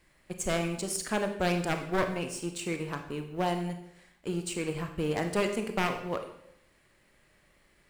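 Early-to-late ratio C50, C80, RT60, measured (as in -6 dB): 8.5 dB, 11.0 dB, 0.75 s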